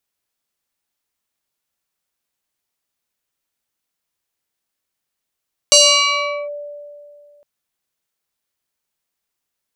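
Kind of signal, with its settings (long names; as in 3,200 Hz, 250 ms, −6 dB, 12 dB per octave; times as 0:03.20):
two-operator FM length 1.71 s, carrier 584 Hz, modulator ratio 2.94, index 4.2, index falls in 0.77 s linear, decay 2.38 s, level −5 dB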